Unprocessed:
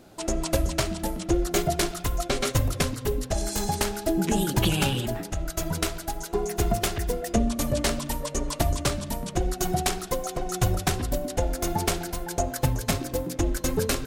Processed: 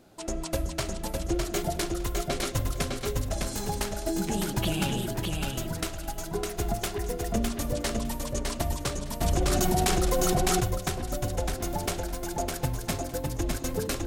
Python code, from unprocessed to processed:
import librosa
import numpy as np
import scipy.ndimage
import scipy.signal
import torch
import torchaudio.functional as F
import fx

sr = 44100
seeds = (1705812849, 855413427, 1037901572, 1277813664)

y = fx.echo_feedback(x, sr, ms=607, feedback_pct=17, wet_db=-3.5)
y = fx.env_flatten(y, sr, amount_pct=100, at=(9.21, 10.6), fade=0.02)
y = F.gain(torch.from_numpy(y), -5.5).numpy()